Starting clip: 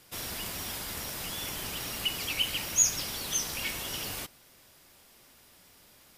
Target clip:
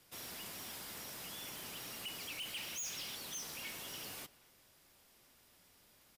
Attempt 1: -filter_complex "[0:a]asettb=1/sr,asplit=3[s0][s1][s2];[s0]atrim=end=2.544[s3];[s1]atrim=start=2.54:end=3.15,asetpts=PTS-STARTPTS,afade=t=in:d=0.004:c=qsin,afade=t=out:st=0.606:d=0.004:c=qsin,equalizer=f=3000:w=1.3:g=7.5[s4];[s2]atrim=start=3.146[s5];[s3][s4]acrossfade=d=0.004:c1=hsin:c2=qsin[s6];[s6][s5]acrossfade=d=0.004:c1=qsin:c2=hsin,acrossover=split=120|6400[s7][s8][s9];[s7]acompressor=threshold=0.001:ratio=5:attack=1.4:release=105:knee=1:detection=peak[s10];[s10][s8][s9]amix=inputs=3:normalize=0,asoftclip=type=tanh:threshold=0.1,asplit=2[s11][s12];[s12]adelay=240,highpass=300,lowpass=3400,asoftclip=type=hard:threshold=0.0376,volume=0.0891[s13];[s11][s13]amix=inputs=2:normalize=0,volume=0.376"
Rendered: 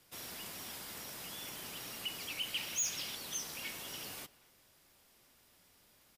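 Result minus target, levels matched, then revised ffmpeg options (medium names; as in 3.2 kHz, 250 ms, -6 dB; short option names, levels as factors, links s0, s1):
saturation: distortion -8 dB
-filter_complex "[0:a]asettb=1/sr,asplit=3[s0][s1][s2];[s0]atrim=end=2.544[s3];[s1]atrim=start=2.54:end=3.15,asetpts=PTS-STARTPTS,afade=t=in:d=0.004:c=qsin,afade=t=out:st=0.606:d=0.004:c=qsin,equalizer=f=3000:w=1.3:g=7.5[s4];[s2]atrim=start=3.146[s5];[s3][s4]acrossfade=d=0.004:c1=hsin:c2=qsin[s6];[s6][s5]acrossfade=d=0.004:c1=qsin:c2=hsin,acrossover=split=120|6400[s7][s8][s9];[s7]acompressor=threshold=0.001:ratio=5:attack=1.4:release=105:knee=1:detection=peak[s10];[s10][s8][s9]amix=inputs=3:normalize=0,asoftclip=type=tanh:threshold=0.0282,asplit=2[s11][s12];[s12]adelay=240,highpass=300,lowpass=3400,asoftclip=type=hard:threshold=0.0376,volume=0.0891[s13];[s11][s13]amix=inputs=2:normalize=0,volume=0.376"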